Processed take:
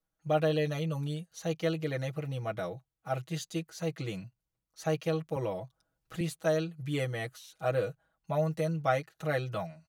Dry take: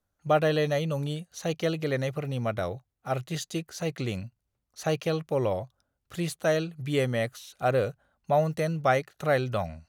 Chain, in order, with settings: comb 6.2 ms, depth 93%; 5.36–6.21 three-band squash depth 40%; gain -8 dB

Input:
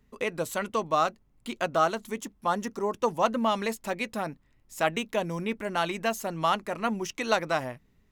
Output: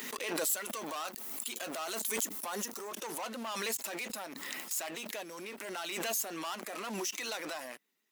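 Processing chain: bin magnitudes rounded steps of 15 dB; 0.49–2.89 high shelf 7400 Hz +10 dB; sample leveller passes 3; limiter -31 dBFS, peak gain reduction 20.5 dB; HPF 230 Hz 24 dB/oct; tilt +3.5 dB/oct; backwards sustainer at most 26 dB/s; gain -3 dB

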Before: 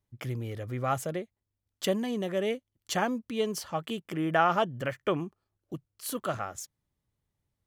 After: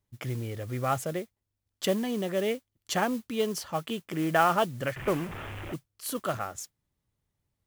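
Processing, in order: 4.96–5.74 delta modulation 16 kbps, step -33.5 dBFS; modulation noise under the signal 20 dB; gain +1 dB

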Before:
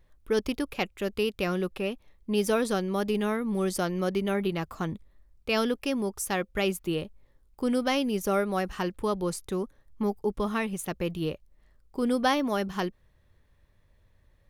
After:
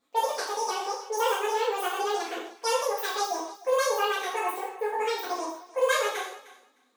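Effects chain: wow and flutter 18 cents; wide varispeed 2.08×; brick-wall FIR high-pass 230 Hz; bell 2400 Hz -2.5 dB; on a send: thinning echo 0.306 s, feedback 16%, high-pass 420 Hz, level -17.5 dB; on the sum: non-linear reverb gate 0.2 s falling, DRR -8 dB; gain -8 dB

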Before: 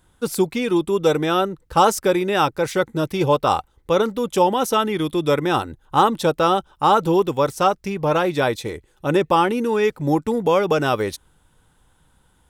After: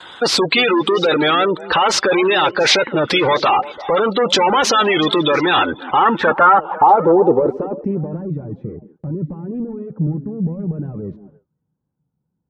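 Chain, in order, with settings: overdrive pedal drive 35 dB, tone 4100 Hz, clips at -3 dBFS; spectral gate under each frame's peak -20 dB strong; HPF 51 Hz 6 dB/oct; low shelf 270 Hz -10.5 dB; limiter -9 dBFS, peak gain reduction 6 dB; low-pass sweep 4400 Hz -> 160 Hz, 5.31–8.31; delay with a stepping band-pass 0.173 s, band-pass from 250 Hz, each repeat 1.4 oct, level -11 dB; gate with hold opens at -31 dBFS; record warp 33 1/3 rpm, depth 100 cents

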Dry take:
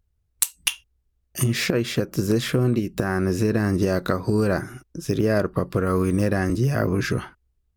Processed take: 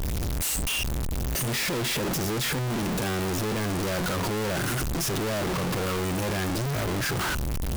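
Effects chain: infinite clipping; gain -4 dB

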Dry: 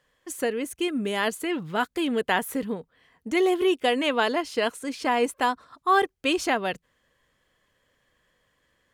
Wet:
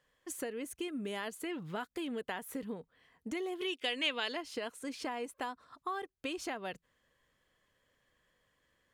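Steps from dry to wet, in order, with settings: compressor 6:1, threshold -30 dBFS, peak gain reduction 14 dB; 3.61–4.37 weighting filter D; gain -6 dB

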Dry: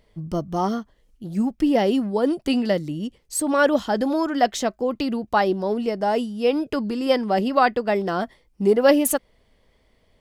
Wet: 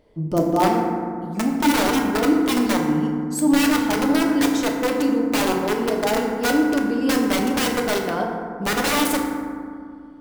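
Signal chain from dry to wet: wrapped overs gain 15 dB; bell 400 Hz +11 dB 2.9 oct, from 0.67 s +3.5 dB; FDN reverb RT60 2.2 s, low-frequency decay 1.4×, high-frequency decay 0.35×, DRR 0 dB; gain -4.5 dB

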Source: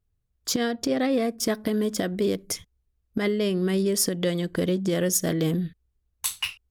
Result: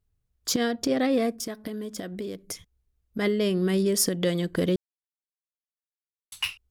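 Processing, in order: 1.32–3.19 compressor 4:1, threshold -33 dBFS, peak gain reduction 11 dB; 4.76–6.32 mute

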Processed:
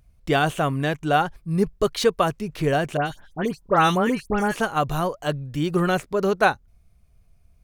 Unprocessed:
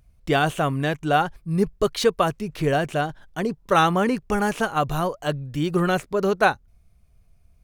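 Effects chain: 2.97–4.56 dispersion highs, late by 96 ms, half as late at 2700 Hz

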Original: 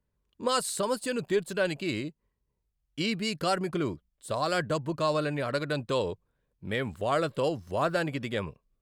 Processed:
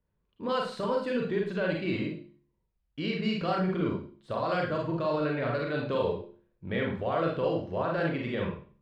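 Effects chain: air absorption 270 m; de-hum 70.08 Hz, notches 5; limiter -23.5 dBFS, peak gain reduction 7.5 dB; Schroeder reverb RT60 0.41 s, combs from 33 ms, DRR -1 dB

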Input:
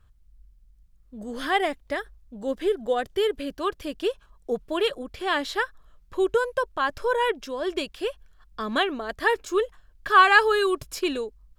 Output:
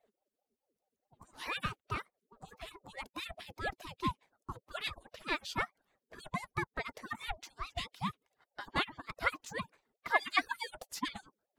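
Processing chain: median-filter separation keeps percussive; ring modulator with a swept carrier 500 Hz, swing 40%, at 4.7 Hz; gain -5 dB

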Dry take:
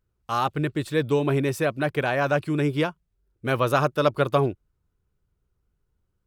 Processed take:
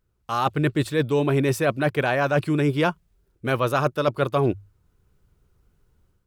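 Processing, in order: AGC gain up to 8 dB; notches 50/100 Hz; reverse; compressor, threshold -22 dBFS, peak gain reduction 12.5 dB; reverse; gain +3.5 dB

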